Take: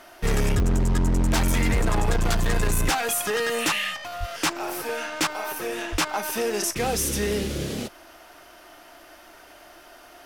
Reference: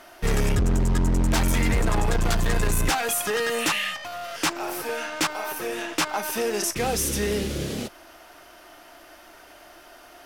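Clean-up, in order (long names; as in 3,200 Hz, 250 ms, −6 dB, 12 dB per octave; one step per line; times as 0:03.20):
click removal
high-pass at the plosives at 0:02.05/0:04.19/0:05.91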